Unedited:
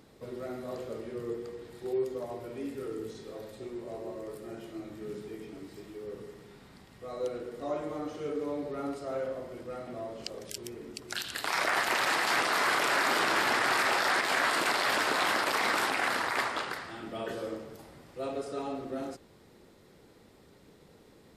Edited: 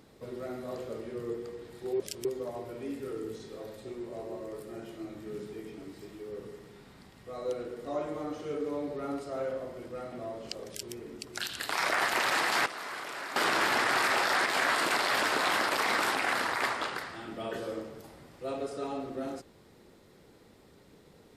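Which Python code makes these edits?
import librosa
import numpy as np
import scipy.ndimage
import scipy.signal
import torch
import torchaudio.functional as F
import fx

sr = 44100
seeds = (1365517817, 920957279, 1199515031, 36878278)

y = fx.edit(x, sr, fx.duplicate(start_s=10.43, length_s=0.25, to_s=2.0),
    fx.clip_gain(start_s=12.41, length_s=0.7, db=-12.0), tone=tone)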